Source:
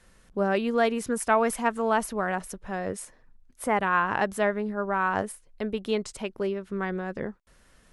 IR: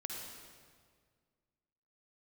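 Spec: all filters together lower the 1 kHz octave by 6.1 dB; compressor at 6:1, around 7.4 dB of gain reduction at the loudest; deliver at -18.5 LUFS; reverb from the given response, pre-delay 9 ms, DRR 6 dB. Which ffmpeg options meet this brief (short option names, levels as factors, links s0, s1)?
-filter_complex "[0:a]equalizer=f=1000:t=o:g=-8,acompressor=threshold=0.0355:ratio=6,asplit=2[s0][s1];[1:a]atrim=start_sample=2205,adelay=9[s2];[s1][s2]afir=irnorm=-1:irlink=0,volume=0.531[s3];[s0][s3]amix=inputs=2:normalize=0,volume=5.96"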